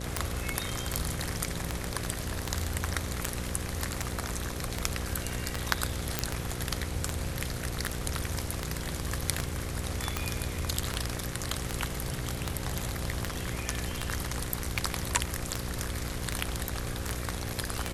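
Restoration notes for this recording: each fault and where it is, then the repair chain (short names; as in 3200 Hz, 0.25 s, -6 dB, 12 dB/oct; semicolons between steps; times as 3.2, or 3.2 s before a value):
buzz 60 Hz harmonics 9 -38 dBFS
tick 78 rpm
6.19 pop -8 dBFS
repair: de-click; de-hum 60 Hz, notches 9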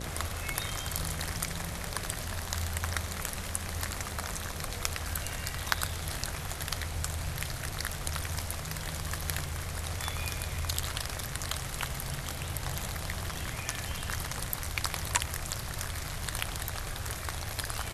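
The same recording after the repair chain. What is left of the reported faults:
none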